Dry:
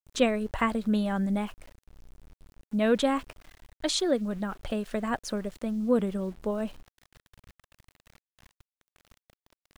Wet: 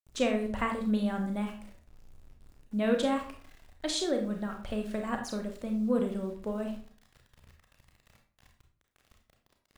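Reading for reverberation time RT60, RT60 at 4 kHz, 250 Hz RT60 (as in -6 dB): 0.45 s, 0.35 s, 0.55 s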